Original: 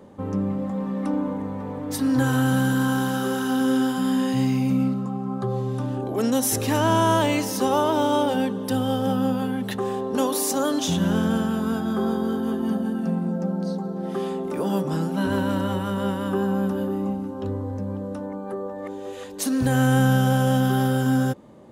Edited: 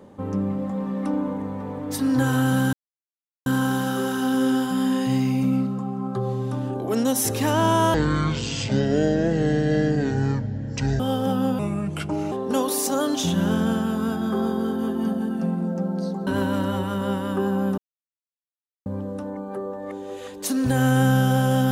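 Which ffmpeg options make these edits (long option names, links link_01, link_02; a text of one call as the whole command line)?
ffmpeg -i in.wav -filter_complex "[0:a]asplit=9[link_01][link_02][link_03][link_04][link_05][link_06][link_07][link_08][link_09];[link_01]atrim=end=2.73,asetpts=PTS-STARTPTS,afade=type=out:start_time=2.726:duration=0.004:curve=hsin,apad=pad_dur=0.73[link_10];[link_02]atrim=start=2.73:end=7.214,asetpts=PTS-STARTPTS,afade=type=in:duration=0.004:curve=hsin[link_11];[link_03]atrim=start=7.21:end=8.8,asetpts=PTS-STARTPTS,asetrate=22932,aresample=44100,atrim=end_sample=134844,asetpts=PTS-STARTPTS[link_12];[link_04]atrim=start=8.796:end=9.394[link_13];[link_05]atrim=start=9.39:end=9.96,asetpts=PTS-STARTPTS,asetrate=34398,aresample=44100[link_14];[link_06]atrim=start=9.956:end=13.912[link_15];[link_07]atrim=start=15.228:end=16.74,asetpts=PTS-STARTPTS,afade=type=out:start_time=1.508:duration=0.004:curve=hsin[link_16];[link_08]atrim=start=16.74:end=17.82,asetpts=PTS-STARTPTS,volume=0[link_17];[link_09]atrim=start=17.82,asetpts=PTS-STARTPTS,afade=type=in:duration=0.004:curve=hsin[link_18];[link_10][link_11]concat=n=2:v=0:a=1[link_19];[link_19][link_12]acrossfade=duration=0.004:curve1=hsin:curve2=hsin[link_20];[link_20][link_13]acrossfade=duration=0.004:curve1=hsin:curve2=hsin[link_21];[link_21][link_14]acrossfade=duration=0.004:curve1=hsin:curve2=hsin[link_22];[link_22][link_15]acrossfade=duration=0.004:curve1=hsin:curve2=hsin[link_23];[link_16][link_17][link_18]concat=n=3:v=0:a=1[link_24];[link_23][link_24]acrossfade=duration=0.004:curve1=hsin:curve2=hsin" out.wav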